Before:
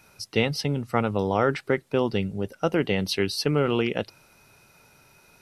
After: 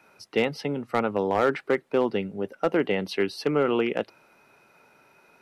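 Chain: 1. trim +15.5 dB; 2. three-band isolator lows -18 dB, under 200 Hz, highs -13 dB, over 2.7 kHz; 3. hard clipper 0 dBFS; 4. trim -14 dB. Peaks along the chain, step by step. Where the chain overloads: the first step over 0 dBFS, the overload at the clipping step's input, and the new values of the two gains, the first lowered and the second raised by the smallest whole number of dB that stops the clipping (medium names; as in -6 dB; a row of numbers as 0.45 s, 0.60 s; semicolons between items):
+9.5 dBFS, +6.0 dBFS, 0.0 dBFS, -14.0 dBFS; step 1, 6.0 dB; step 1 +9.5 dB, step 4 -8 dB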